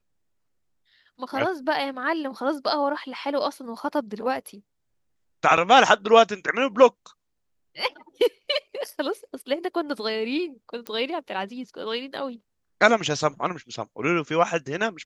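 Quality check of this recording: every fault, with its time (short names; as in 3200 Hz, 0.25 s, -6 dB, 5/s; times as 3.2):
5.57–5.58 gap 5.7 ms
10.87 pop -17 dBFS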